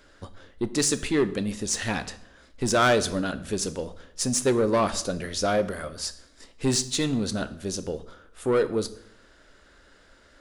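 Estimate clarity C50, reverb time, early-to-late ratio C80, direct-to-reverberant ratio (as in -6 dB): 16.0 dB, 0.75 s, 18.5 dB, 12.0 dB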